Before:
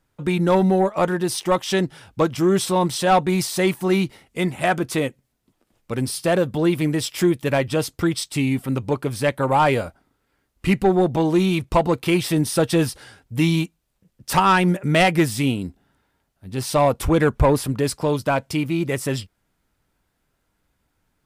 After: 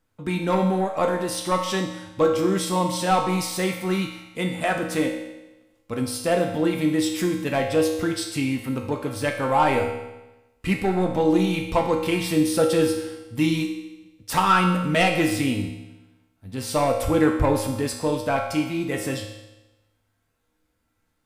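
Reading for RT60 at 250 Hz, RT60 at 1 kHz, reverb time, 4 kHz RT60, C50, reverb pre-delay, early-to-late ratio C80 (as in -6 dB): 1.0 s, 1.0 s, 1.0 s, 1.0 s, 5.0 dB, 4 ms, 7.5 dB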